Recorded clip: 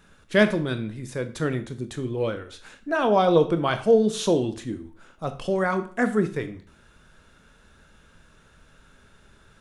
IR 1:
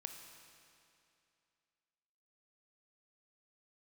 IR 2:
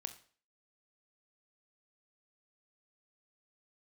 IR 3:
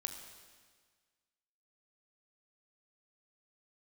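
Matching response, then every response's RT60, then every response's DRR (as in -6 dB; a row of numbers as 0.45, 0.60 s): 2; 2.6, 0.45, 1.6 s; 4.5, 9.0, 5.0 dB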